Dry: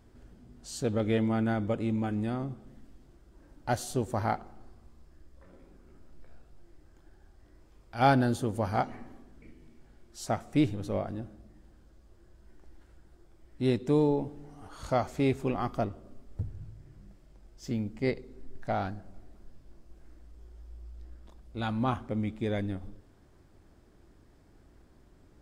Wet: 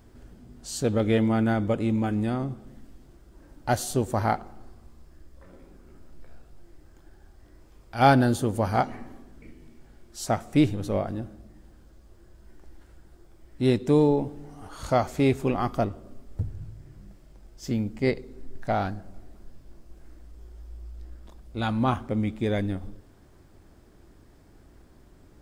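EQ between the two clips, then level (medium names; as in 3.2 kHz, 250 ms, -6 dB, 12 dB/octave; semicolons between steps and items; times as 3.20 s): treble shelf 11 kHz +6.5 dB; +5.0 dB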